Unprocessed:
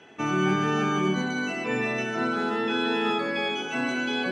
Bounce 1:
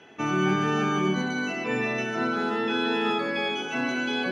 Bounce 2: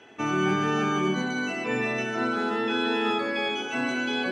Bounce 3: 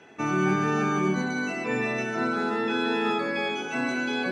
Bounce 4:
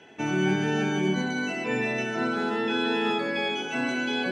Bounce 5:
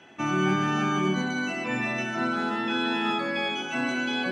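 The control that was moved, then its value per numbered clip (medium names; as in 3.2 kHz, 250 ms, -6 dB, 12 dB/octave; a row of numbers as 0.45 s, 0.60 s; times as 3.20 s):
band-stop, frequency: 7.9 kHz, 170 Hz, 3.1 kHz, 1.2 kHz, 440 Hz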